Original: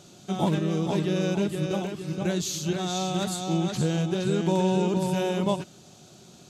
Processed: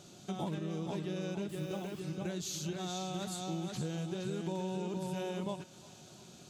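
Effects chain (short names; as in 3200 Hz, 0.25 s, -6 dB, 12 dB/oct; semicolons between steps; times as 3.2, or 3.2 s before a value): compressor 3:1, threshold -33 dBFS, peak gain reduction 10.5 dB; 1.49–2 requantised 10-bit, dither triangular; thinning echo 0.35 s, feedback 84%, high-pass 880 Hz, level -18 dB; gain -4 dB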